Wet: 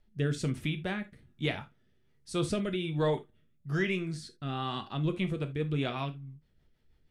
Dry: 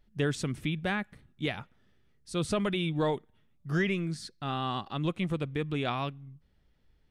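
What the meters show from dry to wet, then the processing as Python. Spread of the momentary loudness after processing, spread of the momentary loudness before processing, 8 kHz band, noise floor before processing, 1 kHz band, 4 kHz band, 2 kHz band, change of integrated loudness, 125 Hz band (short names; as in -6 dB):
9 LU, 9 LU, -2.0 dB, -67 dBFS, -3.5 dB, -1.5 dB, -2.0 dB, -1.0 dB, +0.5 dB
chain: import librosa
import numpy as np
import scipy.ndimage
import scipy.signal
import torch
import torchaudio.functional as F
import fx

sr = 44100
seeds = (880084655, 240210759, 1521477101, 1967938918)

y = fx.rotary_switch(x, sr, hz=1.2, then_hz=6.3, switch_at_s=4.8)
y = fx.rev_gated(y, sr, seeds[0], gate_ms=100, shape='falling', drr_db=6.5)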